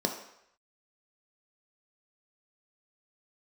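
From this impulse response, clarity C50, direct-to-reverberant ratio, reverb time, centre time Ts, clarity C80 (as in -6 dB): 7.5 dB, 2.5 dB, 0.75 s, 22 ms, 10.5 dB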